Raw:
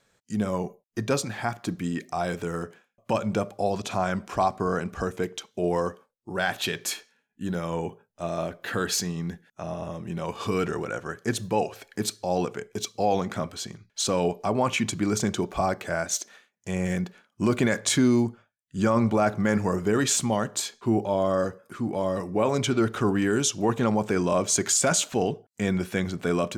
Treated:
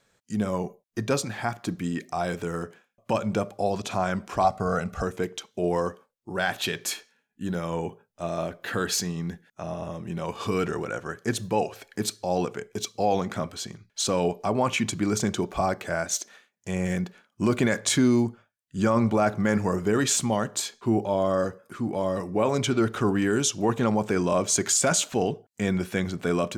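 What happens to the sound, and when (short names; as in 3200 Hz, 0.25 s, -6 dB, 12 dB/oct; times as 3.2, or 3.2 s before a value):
4.44–5.03 comb 1.5 ms, depth 66%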